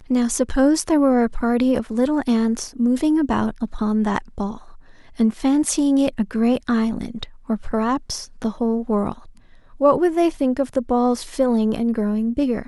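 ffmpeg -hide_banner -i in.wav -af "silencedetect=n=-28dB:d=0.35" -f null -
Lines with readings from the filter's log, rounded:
silence_start: 4.57
silence_end: 5.19 | silence_duration: 0.63
silence_start: 9.12
silence_end: 9.81 | silence_duration: 0.68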